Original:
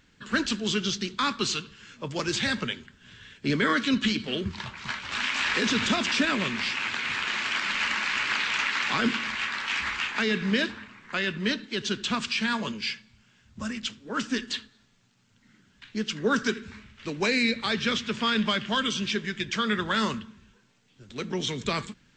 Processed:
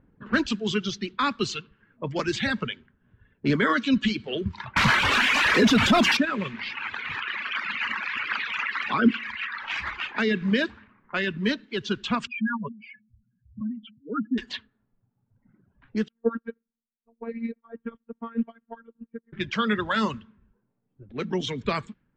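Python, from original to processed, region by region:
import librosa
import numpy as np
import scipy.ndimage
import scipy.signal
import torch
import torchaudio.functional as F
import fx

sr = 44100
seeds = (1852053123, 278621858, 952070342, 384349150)

y = fx.chain(x, sr, fx.power_curve(exponent=0.5),
    fx.env_flatten(amount_pct=70), at=(4.76, 6.17))
y = fx.chain(y, sr, fx.envelope_sharpen(power=1.5),
    fx.highpass(hz=57.0, slope=12),
    fx.peak_eq(hz=230.0, db=4.5, octaves=0.26), at=(7.2, 9.62))
y = fx.chain(y, sr, fx.spec_expand(power=3.2),
    fx.air_absorb(metres=380.0), at=(12.27, 14.38))
y = fx.chain(y, sr, fx.lowpass(hz=1100.0, slope=12),
    fx.robotise(hz=230.0),
    fx.upward_expand(threshold_db=-46.0, expansion=2.5), at=(16.08, 19.33))
y = fx.dereverb_blind(y, sr, rt60_s=2.0)
y = fx.lowpass(y, sr, hz=2100.0, slope=6)
y = fx.env_lowpass(y, sr, base_hz=740.0, full_db=-28.0)
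y = y * librosa.db_to_amplitude(4.0)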